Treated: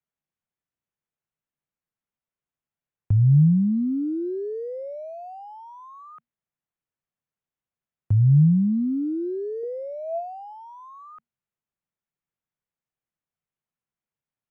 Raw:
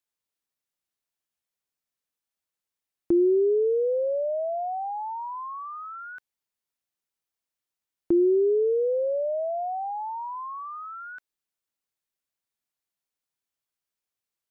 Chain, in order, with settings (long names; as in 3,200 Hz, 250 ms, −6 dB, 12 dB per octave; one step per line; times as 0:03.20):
adaptive Wiener filter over 9 samples
frequency shifter −240 Hz
parametric band 150 Hz +7 dB 0.63 octaves
0:09.63–0:10.53: hollow resonant body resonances 410/670 Hz, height 11 dB, ringing for 70 ms
dynamic equaliser 1,100 Hz, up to −6 dB, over −43 dBFS, Q 0.83